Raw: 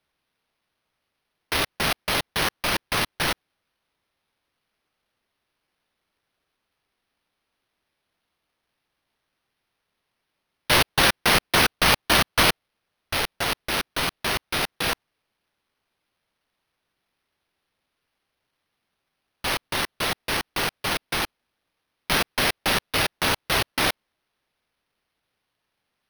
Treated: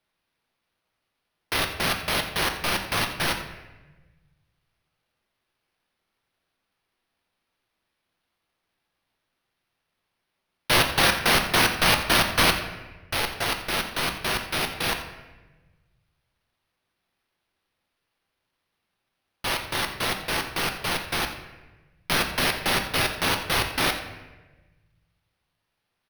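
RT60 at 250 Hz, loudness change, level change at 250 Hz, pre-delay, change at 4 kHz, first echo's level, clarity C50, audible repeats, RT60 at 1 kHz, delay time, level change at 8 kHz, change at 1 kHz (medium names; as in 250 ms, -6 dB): 1.5 s, -1.0 dB, -0.5 dB, 6 ms, -1.0 dB, -14.5 dB, 8.0 dB, 1, 1.1 s, 86 ms, -1.0 dB, -0.5 dB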